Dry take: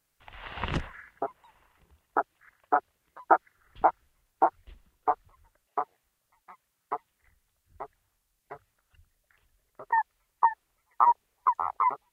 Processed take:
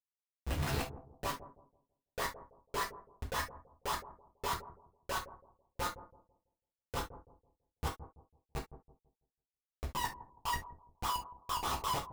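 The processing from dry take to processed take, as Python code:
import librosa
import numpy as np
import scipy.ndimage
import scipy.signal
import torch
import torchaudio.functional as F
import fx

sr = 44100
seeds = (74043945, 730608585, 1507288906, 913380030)

y = fx.pitch_glide(x, sr, semitones=7.0, runs='ending unshifted')
y = y + 0.36 * np.pad(y, (int(7.2 * sr / 1000.0), 0))[:len(y)]
y = fx.dereverb_blind(y, sr, rt60_s=0.56)
y = fx.dispersion(y, sr, late='highs', ms=56.0, hz=740.0)
y = fx.schmitt(y, sr, flips_db=-37.0)
y = fx.echo_bbd(y, sr, ms=165, stages=1024, feedback_pct=30, wet_db=-13.0)
y = fx.rev_gated(y, sr, seeds[0], gate_ms=90, shape='falling', drr_db=-1.5)
y = F.gain(torch.from_numpy(y), -5.5).numpy()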